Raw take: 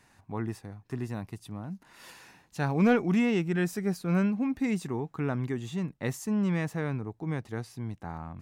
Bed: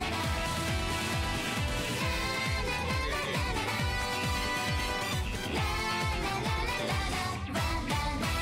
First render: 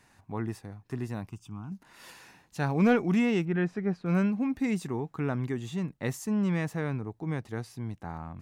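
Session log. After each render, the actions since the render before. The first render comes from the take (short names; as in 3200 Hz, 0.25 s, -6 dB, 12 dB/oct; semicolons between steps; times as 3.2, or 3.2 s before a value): 1.29–1.72 fixed phaser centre 2800 Hz, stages 8; 3.45–4.06 LPF 2400 Hz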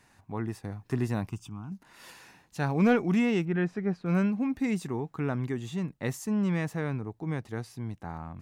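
0.64–1.49 gain +5.5 dB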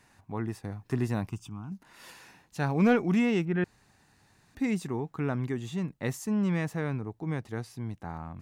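3.64–4.55 room tone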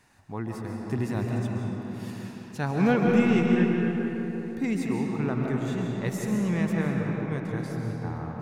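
on a send: darkening echo 0.171 s, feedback 77%, low-pass 1900 Hz, level -8.5 dB; on the sum: digital reverb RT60 3.4 s, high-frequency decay 0.65×, pre-delay 95 ms, DRR 0.5 dB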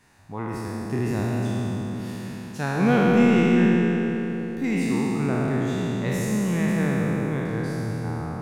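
spectral trails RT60 2.89 s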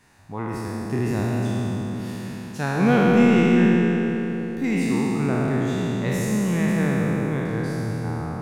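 gain +1.5 dB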